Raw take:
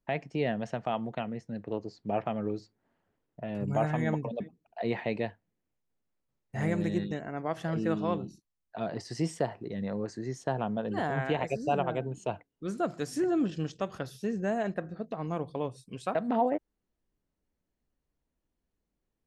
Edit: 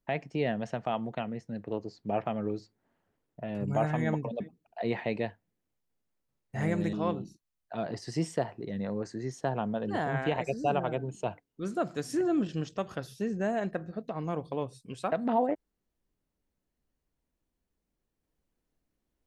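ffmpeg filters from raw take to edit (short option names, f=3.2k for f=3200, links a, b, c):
-filter_complex "[0:a]asplit=2[a][b];[a]atrim=end=6.932[c];[b]atrim=start=7.958[d];[c][d]acrossfade=d=0.004:c1=hsin:c2=hsin"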